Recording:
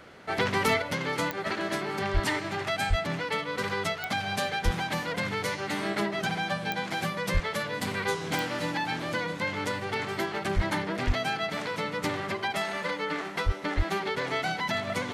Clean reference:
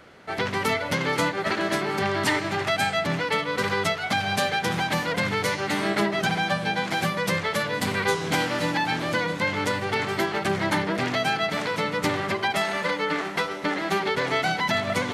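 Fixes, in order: clip repair -16 dBFS; de-click; de-plosive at 2.13/2.89/4.64/7.33/10.55/11.06/13.45/13.76; gain 0 dB, from 0.82 s +5.5 dB

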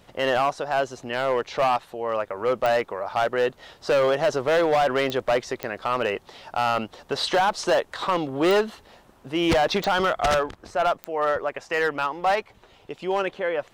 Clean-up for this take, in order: clip repair -16 dBFS; de-click

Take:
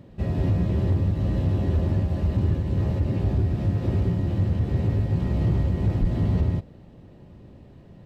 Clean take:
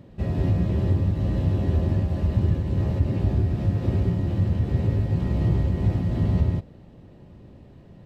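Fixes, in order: clip repair -16 dBFS; 6–6.12 HPF 140 Hz 24 dB/oct

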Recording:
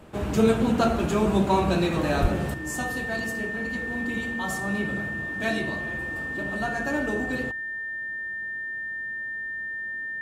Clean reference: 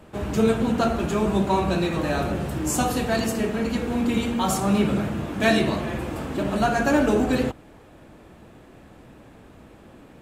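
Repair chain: notch 1800 Hz, Q 30; 2.21–2.33 HPF 140 Hz 24 dB/oct; 2.54 gain correction +8.5 dB

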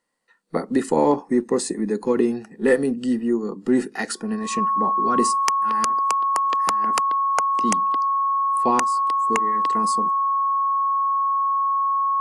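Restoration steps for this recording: notch 1100 Hz, Q 30

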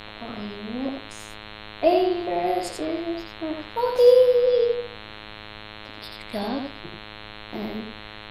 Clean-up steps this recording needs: de-hum 106.3 Hz, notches 40; noise print and reduce 27 dB; inverse comb 86 ms -4 dB

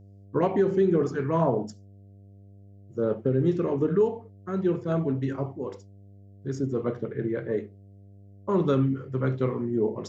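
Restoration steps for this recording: de-hum 99.1 Hz, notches 7

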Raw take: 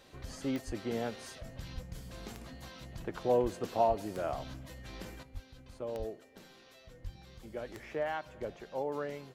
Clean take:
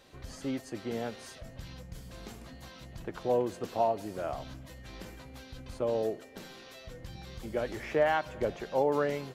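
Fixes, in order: de-click; de-plosive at 0.66/1.74/3.42/3.88/5.33/5.98/7.03; gain correction +8.5 dB, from 5.23

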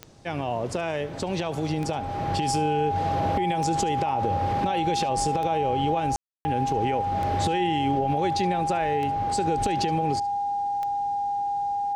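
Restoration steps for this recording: de-click; notch 810 Hz, Q 30; room tone fill 6.16–6.45; inverse comb 72 ms -21 dB

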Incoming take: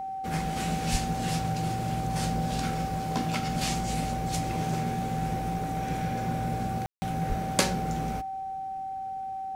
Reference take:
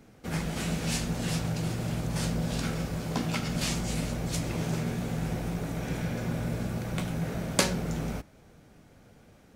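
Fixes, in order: notch 770 Hz, Q 30; 0.91–1.03 HPF 140 Hz 24 dB/oct; 7.28–7.4 HPF 140 Hz 24 dB/oct; room tone fill 6.86–7.02

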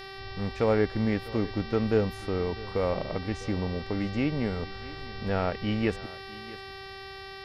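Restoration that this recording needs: de-hum 388.5 Hz, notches 14; notch 1900 Hz, Q 30; inverse comb 0.651 s -19 dB

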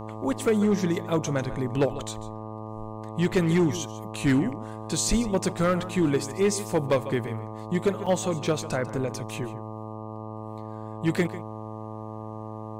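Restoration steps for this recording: clip repair -16 dBFS; de-hum 109 Hz, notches 11; interpolate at 8.06, 5.6 ms; inverse comb 0.145 s -15.5 dB

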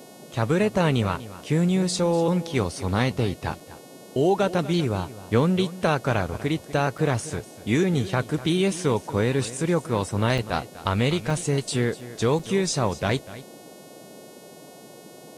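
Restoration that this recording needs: de-hum 364.2 Hz, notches 35; interpolate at 3.6/6.98/10.38/11.3/12.01/12.39, 4.4 ms; noise print and reduce 24 dB; inverse comb 0.245 s -16 dB

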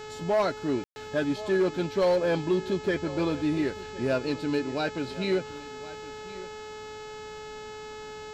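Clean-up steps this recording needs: clip repair -18.5 dBFS; de-hum 428.5 Hz, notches 18; room tone fill 0.84–0.96; inverse comb 1.065 s -17.5 dB

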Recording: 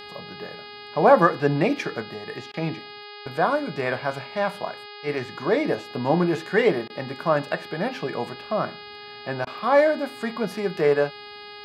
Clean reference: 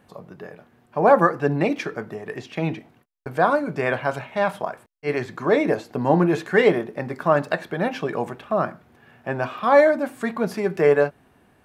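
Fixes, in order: de-hum 413.4 Hz, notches 12; interpolate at 2.52/6.88/9.45, 17 ms; gain correction +3 dB, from 2.02

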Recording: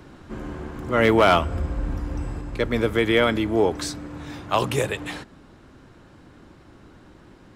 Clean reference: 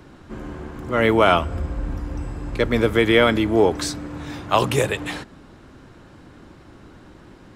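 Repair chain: clip repair -8.5 dBFS; gain 0 dB, from 2.41 s +3.5 dB

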